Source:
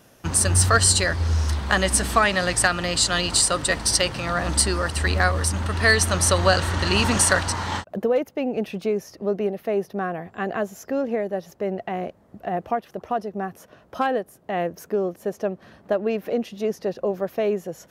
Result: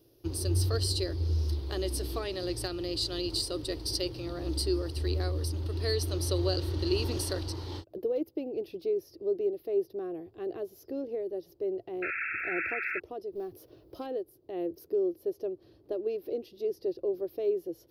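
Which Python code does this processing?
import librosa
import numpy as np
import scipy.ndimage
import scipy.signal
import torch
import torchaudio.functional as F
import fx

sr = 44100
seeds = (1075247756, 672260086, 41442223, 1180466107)

y = fx.law_mismatch(x, sr, coded='mu', at=(13.32, 14.01))
y = fx.curve_eq(y, sr, hz=(120.0, 210.0, 330.0, 660.0, 1700.0, 4800.0, 7300.0, 12000.0), db=(0, -19, 9, -11, -20, 0, -20, 0))
y = fx.spec_paint(y, sr, seeds[0], shape='noise', start_s=12.02, length_s=0.98, low_hz=1300.0, high_hz=2700.0, level_db=-27.0)
y = y * librosa.db_to_amplitude(-7.0)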